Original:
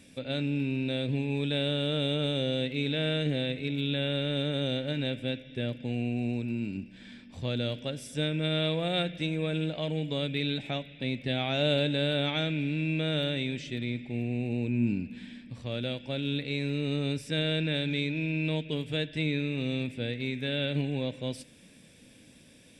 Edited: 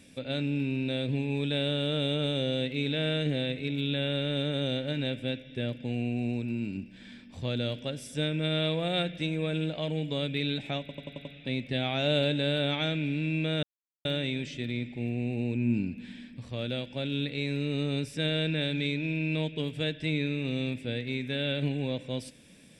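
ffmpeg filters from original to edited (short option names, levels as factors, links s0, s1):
-filter_complex "[0:a]asplit=7[s0][s1][s2][s3][s4][s5][s6];[s0]atrim=end=10.892[s7];[s1]atrim=start=10.798:end=10.892[s8];[s2]atrim=start=10.798:end=10.892[s9];[s3]atrim=start=10.798:end=10.892[s10];[s4]atrim=start=10.798:end=10.892[s11];[s5]atrim=start=10.798:end=13.18,asetpts=PTS-STARTPTS,afade=t=out:st=2.378:d=0.004:c=hsin,apad=pad_dur=0.42[s12];[s6]atrim=start=13.18,asetpts=PTS-STARTPTS,afade=t=in:d=0.004:c=hsin[s13];[s7][s8]acrossfade=d=0.004:c1=hsin:c2=hsin[s14];[s14][s9]acrossfade=d=0.004:c1=hsin:c2=hsin[s15];[s15][s10]acrossfade=d=0.004:c1=hsin:c2=hsin[s16];[s16][s11]acrossfade=d=0.004:c1=hsin:c2=hsin[s17];[s12][s13]concat=n=2:v=0:a=1[s18];[s17][s18]acrossfade=d=0.004:c1=hsin:c2=hsin"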